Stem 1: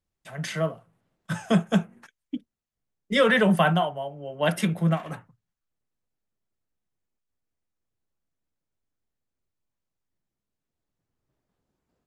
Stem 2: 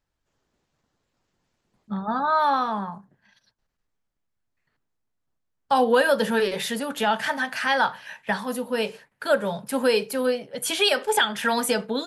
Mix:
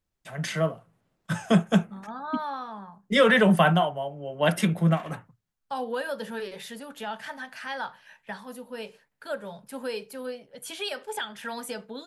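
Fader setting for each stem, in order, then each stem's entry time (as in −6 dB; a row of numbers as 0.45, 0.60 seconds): +1.0, −12.0 decibels; 0.00, 0.00 seconds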